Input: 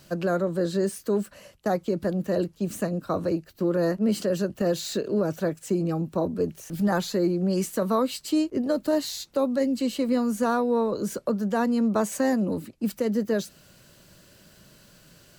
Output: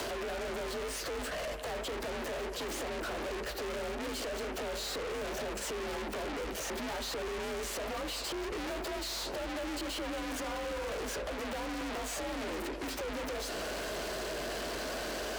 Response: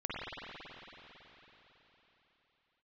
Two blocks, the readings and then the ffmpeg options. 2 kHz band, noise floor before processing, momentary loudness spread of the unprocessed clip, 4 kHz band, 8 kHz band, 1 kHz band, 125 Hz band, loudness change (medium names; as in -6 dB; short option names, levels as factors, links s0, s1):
-0.5 dB, -56 dBFS, 5 LU, +0.5 dB, -2.5 dB, -6.5 dB, -16.5 dB, -10.5 dB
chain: -filter_complex "[0:a]equalizer=f=320:t=o:w=2.4:g=14,flanger=delay=9.3:depth=7.5:regen=-40:speed=2:shape=triangular,asplit=2[s0][s1];[s1]highpass=f=720:p=1,volume=70.8,asoftclip=type=tanh:threshold=0.158[s2];[s0][s2]amix=inputs=2:normalize=0,lowpass=f=3100:p=1,volume=0.501,acrossover=split=1400|6800[s3][s4][s5];[s3]acompressor=threshold=0.0251:ratio=4[s6];[s4]acompressor=threshold=0.00891:ratio=4[s7];[s5]acompressor=threshold=0.00251:ratio=4[s8];[s6][s7][s8]amix=inputs=3:normalize=0,bass=f=250:g=-13,treble=f=4000:g=1,acompressor=threshold=0.0126:ratio=3,asplit=2[s9][s10];[1:a]atrim=start_sample=2205,afade=t=out:st=0.41:d=0.01,atrim=end_sample=18522,asetrate=31752,aresample=44100[s11];[s10][s11]afir=irnorm=-1:irlink=0,volume=0.141[s12];[s9][s12]amix=inputs=2:normalize=0,aeval=exprs='0.0447*(cos(1*acos(clip(val(0)/0.0447,-1,1)))-cos(1*PI/2))+0.00708*(cos(4*acos(clip(val(0)/0.0447,-1,1)))-cos(4*PI/2))':c=same,afreqshift=49,asoftclip=type=hard:threshold=0.0106,volume=1.68"